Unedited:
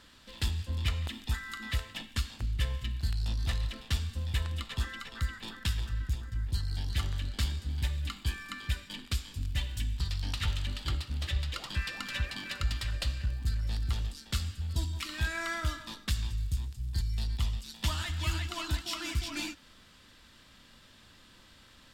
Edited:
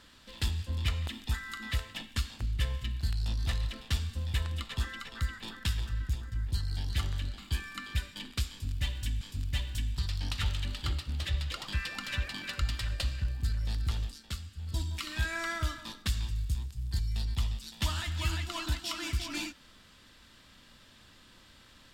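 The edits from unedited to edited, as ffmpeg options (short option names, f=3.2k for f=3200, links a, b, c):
-filter_complex "[0:a]asplit=5[a][b][c][d][e];[a]atrim=end=7.382[f];[b]atrim=start=8.118:end=9.952[g];[c]atrim=start=9.228:end=14.42,asetpts=PTS-STARTPTS,afade=t=out:st=4.832:d=0.36:silence=0.375837[h];[d]atrim=start=14.42:end=14.52,asetpts=PTS-STARTPTS,volume=-8.5dB[i];[e]atrim=start=14.52,asetpts=PTS-STARTPTS,afade=t=in:d=0.36:silence=0.375837[j];[f][g]acrossfade=d=0.004:c1=hsin:c2=hsin[k];[h][i][j]concat=n=3:v=0:a=1[l];[k][l]acrossfade=d=0.004:c1=hsin:c2=hsin"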